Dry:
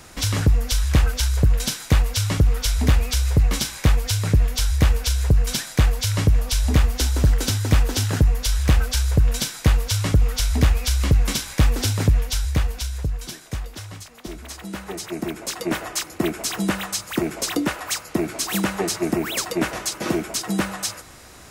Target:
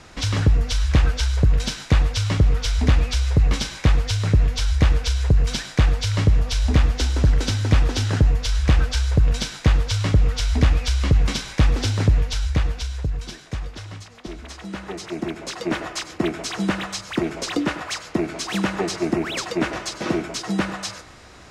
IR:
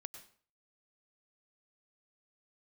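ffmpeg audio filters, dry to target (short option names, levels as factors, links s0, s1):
-filter_complex "[0:a]lowpass=5300,asplit=2[s0][s1];[1:a]atrim=start_sample=2205,afade=t=out:st=0.19:d=0.01,atrim=end_sample=8820[s2];[s1][s2]afir=irnorm=-1:irlink=0,volume=2.82[s3];[s0][s3]amix=inputs=2:normalize=0,volume=0.398"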